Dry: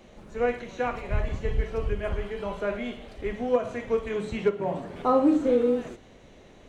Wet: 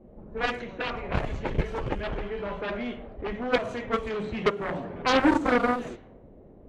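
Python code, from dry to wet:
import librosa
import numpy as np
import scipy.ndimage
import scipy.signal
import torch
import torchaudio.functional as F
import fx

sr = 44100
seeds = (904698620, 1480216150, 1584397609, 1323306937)

y = fx.cheby_harmonics(x, sr, harmonics=(7,), levels_db=(-8,), full_scale_db=-11.0)
y = fx.env_lowpass(y, sr, base_hz=410.0, full_db=-22.0)
y = y * 10.0 ** (-2.5 / 20.0)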